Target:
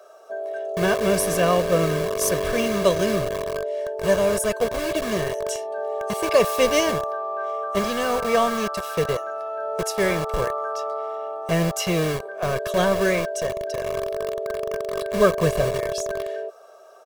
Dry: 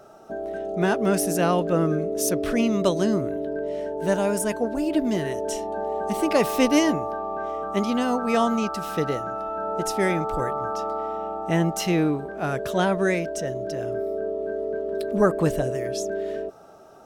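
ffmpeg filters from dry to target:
-filter_complex "[0:a]acrossover=split=380[s0][s1];[s0]acrusher=bits=4:mix=0:aa=0.000001[s2];[s2][s1]amix=inputs=2:normalize=0,aecho=1:1:1.8:0.75"

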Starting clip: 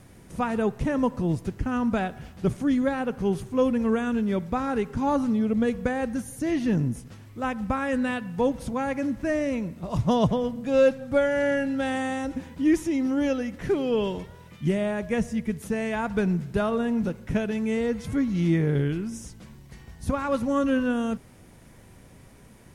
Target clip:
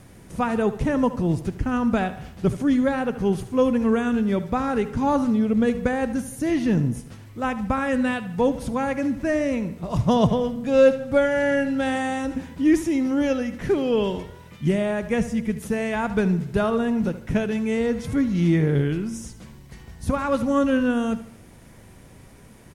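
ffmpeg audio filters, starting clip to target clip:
-af "aecho=1:1:75|150|225|300:0.188|0.0791|0.0332|0.014,volume=1.41"

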